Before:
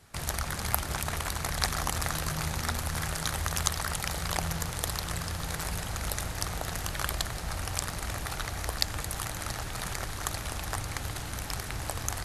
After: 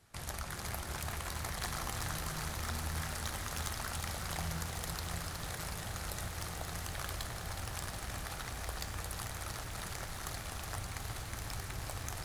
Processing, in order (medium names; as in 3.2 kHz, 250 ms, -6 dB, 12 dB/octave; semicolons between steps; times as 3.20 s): hard clipper -21.5 dBFS, distortion -13 dB; flange 0.53 Hz, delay 8.7 ms, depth 4.2 ms, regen +78%; on a send at -14 dB: reverberation RT60 5.5 s, pre-delay 3 ms; on the sum: bit-crushed delay 367 ms, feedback 80%, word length 9-bit, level -7.5 dB; trim -3.5 dB